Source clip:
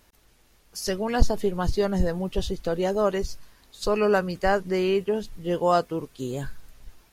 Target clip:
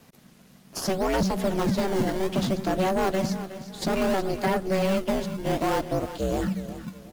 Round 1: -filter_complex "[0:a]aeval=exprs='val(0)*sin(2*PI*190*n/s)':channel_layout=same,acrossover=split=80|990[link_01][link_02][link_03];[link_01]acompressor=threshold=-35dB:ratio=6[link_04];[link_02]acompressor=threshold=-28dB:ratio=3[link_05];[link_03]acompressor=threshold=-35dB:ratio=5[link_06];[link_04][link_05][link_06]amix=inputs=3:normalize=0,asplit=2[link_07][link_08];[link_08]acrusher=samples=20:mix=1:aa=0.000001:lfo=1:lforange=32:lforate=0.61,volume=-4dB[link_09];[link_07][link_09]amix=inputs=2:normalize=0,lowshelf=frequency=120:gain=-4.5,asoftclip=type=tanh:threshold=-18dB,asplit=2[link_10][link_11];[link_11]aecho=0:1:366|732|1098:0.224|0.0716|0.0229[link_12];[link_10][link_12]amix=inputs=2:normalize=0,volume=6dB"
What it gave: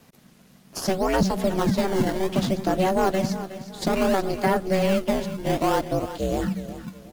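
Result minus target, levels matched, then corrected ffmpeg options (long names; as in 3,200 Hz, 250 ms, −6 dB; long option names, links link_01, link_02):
soft clipping: distortion −8 dB
-filter_complex "[0:a]aeval=exprs='val(0)*sin(2*PI*190*n/s)':channel_layout=same,acrossover=split=80|990[link_01][link_02][link_03];[link_01]acompressor=threshold=-35dB:ratio=6[link_04];[link_02]acompressor=threshold=-28dB:ratio=3[link_05];[link_03]acompressor=threshold=-35dB:ratio=5[link_06];[link_04][link_05][link_06]amix=inputs=3:normalize=0,asplit=2[link_07][link_08];[link_08]acrusher=samples=20:mix=1:aa=0.000001:lfo=1:lforange=32:lforate=0.61,volume=-4dB[link_09];[link_07][link_09]amix=inputs=2:normalize=0,lowshelf=frequency=120:gain=-4.5,asoftclip=type=tanh:threshold=-25dB,asplit=2[link_10][link_11];[link_11]aecho=0:1:366|732|1098:0.224|0.0716|0.0229[link_12];[link_10][link_12]amix=inputs=2:normalize=0,volume=6dB"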